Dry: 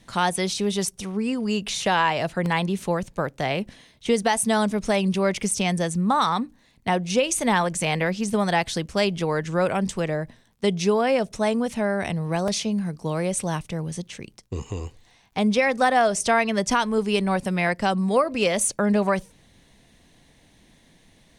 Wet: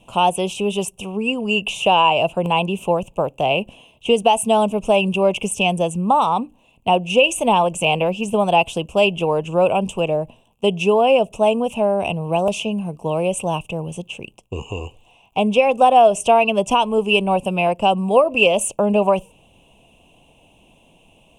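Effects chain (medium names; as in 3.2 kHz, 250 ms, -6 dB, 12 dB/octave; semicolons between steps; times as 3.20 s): FFT filter 260 Hz 0 dB, 660 Hz +8 dB, 1 kHz +6 dB, 1.9 kHz -24 dB, 2.7 kHz +15 dB, 4.3 kHz -18 dB, 7.5 kHz -1 dB; trim +1 dB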